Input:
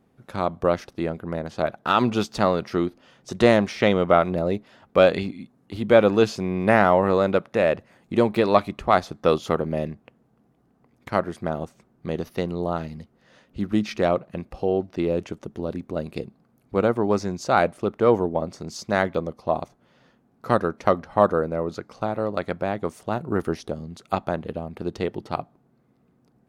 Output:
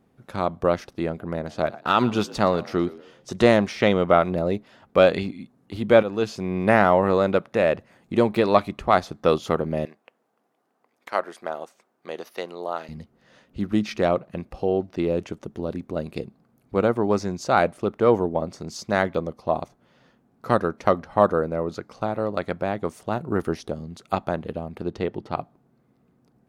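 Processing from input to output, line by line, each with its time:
1.08–3.48 s: frequency-shifting echo 118 ms, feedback 38%, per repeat +59 Hz, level -19.5 dB
6.03–6.57 s: fade in, from -12 dB
9.85–12.89 s: high-pass 530 Hz
24.82–25.38 s: low-pass 3.6 kHz 6 dB/octave

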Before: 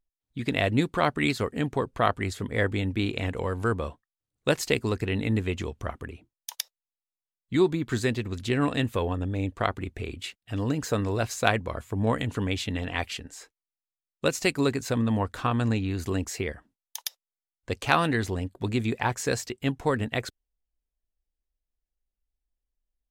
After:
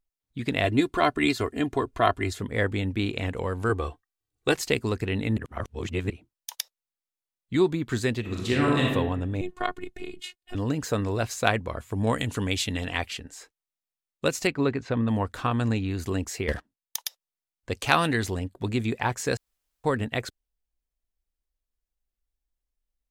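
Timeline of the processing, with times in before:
0.64–2.40 s: comb 2.9 ms
3.69–4.55 s: comb 2.6 ms, depth 71%
5.37–6.10 s: reverse
8.20–8.86 s: reverb throw, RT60 1 s, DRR -2.5 dB
9.41–10.55 s: robot voice 362 Hz
11.91–12.98 s: peaking EQ 10 kHz +9 dB 2.4 oct
14.47–15.08 s: low-pass 2.8 kHz
16.48–16.96 s: waveshaping leveller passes 3
17.75–18.39 s: treble shelf 3.1 kHz +5.5 dB
19.37–19.84 s: room tone

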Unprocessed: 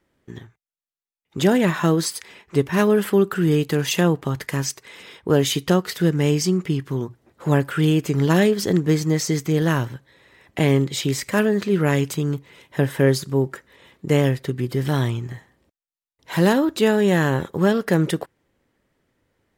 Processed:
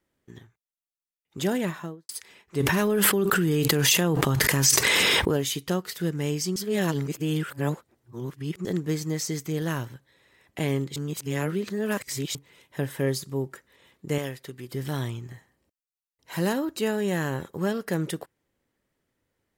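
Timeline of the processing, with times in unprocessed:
1.58–2.09 s: studio fade out
2.60–5.37 s: level flattener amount 100%
6.56–8.65 s: reverse
10.96–12.35 s: reverse
13.00–13.43 s: band-stop 1.5 kHz, Q 9.3
14.18–14.72 s: bass shelf 360 Hz -9.5 dB
15.30–17.91 s: band-stop 3.5 kHz
whole clip: treble shelf 5.3 kHz +7.5 dB; trim -9 dB

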